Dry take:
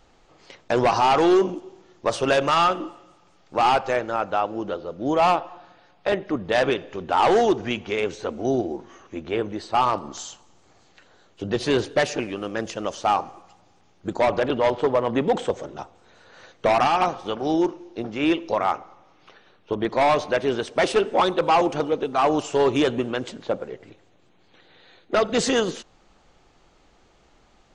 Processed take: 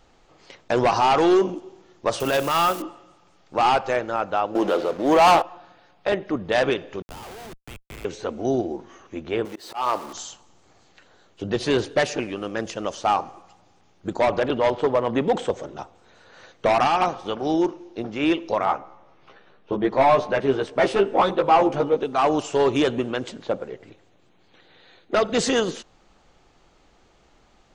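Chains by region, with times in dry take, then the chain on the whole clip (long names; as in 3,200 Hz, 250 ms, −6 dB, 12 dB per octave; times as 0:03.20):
0:02.20–0:02.82: spike at every zero crossing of −23.5 dBFS + transient designer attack −11 dB, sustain −1 dB
0:04.55–0:05.42: high-pass filter 300 Hz + transient designer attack −8 dB, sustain +2 dB + leveller curve on the samples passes 3
0:07.02–0:08.05: first difference + comparator with hysteresis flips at −38 dBFS + multiband upward and downward compressor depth 70%
0:09.45–0:10.13: converter with a step at zero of −37.5 dBFS + bass and treble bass −13 dB, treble +2 dB + volume swells 173 ms
0:18.65–0:21.97: high-shelf EQ 3,100 Hz −10 dB + double-tracking delay 15 ms −2.5 dB
whole clip: no processing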